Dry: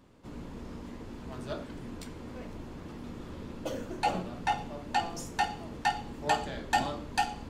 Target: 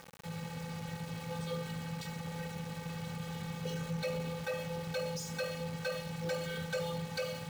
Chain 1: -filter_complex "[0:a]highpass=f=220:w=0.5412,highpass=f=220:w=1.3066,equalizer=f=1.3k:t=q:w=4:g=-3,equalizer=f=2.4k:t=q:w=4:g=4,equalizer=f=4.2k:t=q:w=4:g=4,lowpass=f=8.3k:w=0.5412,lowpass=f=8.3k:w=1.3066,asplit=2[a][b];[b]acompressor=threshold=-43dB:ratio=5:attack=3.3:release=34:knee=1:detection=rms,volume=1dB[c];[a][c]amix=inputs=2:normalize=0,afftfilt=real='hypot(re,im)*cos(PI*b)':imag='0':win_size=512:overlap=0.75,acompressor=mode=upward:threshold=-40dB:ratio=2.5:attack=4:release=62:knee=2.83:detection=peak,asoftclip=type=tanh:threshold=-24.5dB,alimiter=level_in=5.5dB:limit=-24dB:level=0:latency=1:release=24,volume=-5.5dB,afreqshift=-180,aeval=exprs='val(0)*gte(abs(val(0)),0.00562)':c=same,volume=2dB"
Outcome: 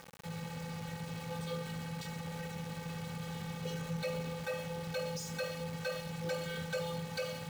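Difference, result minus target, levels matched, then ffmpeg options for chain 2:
compressor: peak gain reduction +8.5 dB
-filter_complex "[0:a]highpass=f=220:w=0.5412,highpass=f=220:w=1.3066,equalizer=f=1.3k:t=q:w=4:g=-3,equalizer=f=2.4k:t=q:w=4:g=4,equalizer=f=4.2k:t=q:w=4:g=4,lowpass=f=8.3k:w=0.5412,lowpass=f=8.3k:w=1.3066,asplit=2[a][b];[b]acompressor=threshold=-32.5dB:ratio=5:attack=3.3:release=34:knee=1:detection=rms,volume=1dB[c];[a][c]amix=inputs=2:normalize=0,afftfilt=real='hypot(re,im)*cos(PI*b)':imag='0':win_size=512:overlap=0.75,acompressor=mode=upward:threshold=-40dB:ratio=2.5:attack=4:release=62:knee=2.83:detection=peak,asoftclip=type=tanh:threshold=-24.5dB,alimiter=level_in=5.5dB:limit=-24dB:level=0:latency=1:release=24,volume=-5.5dB,afreqshift=-180,aeval=exprs='val(0)*gte(abs(val(0)),0.00562)':c=same,volume=2dB"

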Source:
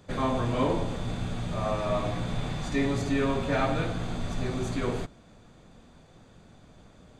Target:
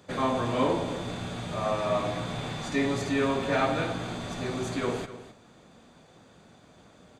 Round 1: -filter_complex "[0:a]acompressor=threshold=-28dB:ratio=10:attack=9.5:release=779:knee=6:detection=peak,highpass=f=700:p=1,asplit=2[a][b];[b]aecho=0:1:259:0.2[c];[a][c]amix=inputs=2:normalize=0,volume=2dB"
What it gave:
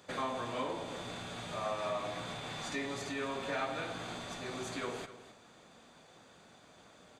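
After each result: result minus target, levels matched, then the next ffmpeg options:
compressor: peak gain reduction +9 dB; 250 Hz band -3.5 dB
-filter_complex "[0:a]highpass=f=700:p=1,asplit=2[a][b];[b]aecho=0:1:259:0.2[c];[a][c]amix=inputs=2:normalize=0,volume=2dB"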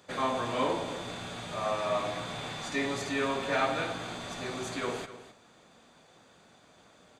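250 Hz band -3.5 dB
-filter_complex "[0:a]highpass=f=220:p=1,asplit=2[a][b];[b]aecho=0:1:259:0.2[c];[a][c]amix=inputs=2:normalize=0,volume=2dB"

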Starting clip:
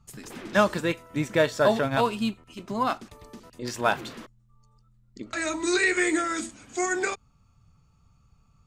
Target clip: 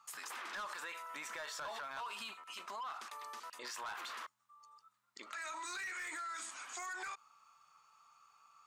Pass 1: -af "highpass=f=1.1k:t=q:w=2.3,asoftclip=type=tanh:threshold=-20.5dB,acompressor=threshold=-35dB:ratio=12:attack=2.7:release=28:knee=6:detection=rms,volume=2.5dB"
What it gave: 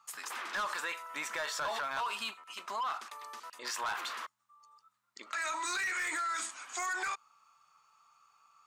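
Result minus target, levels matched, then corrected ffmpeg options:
compressor: peak gain reduction -8.5 dB
-af "highpass=f=1.1k:t=q:w=2.3,asoftclip=type=tanh:threshold=-20.5dB,acompressor=threshold=-44.5dB:ratio=12:attack=2.7:release=28:knee=6:detection=rms,volume=2.5dB"

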